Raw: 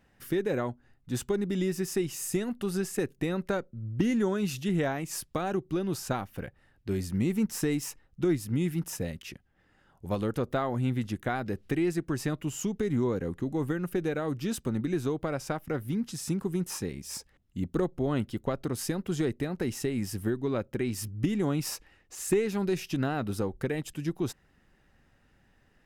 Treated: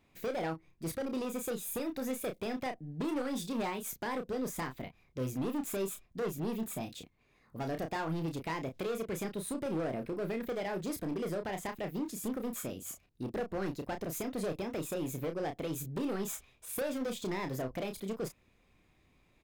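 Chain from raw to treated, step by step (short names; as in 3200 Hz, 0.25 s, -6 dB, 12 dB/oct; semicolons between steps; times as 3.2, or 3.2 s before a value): wide varispeed 1.33×; overloaded stage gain 27.5 dB; doubler 31 ms -7 dB; gain -4.5 dB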